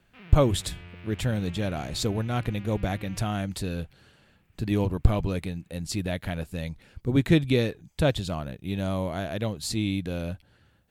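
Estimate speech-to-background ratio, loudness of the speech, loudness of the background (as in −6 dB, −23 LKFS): 17.5 dB, −28.5 LKFS, −46.0 LKFS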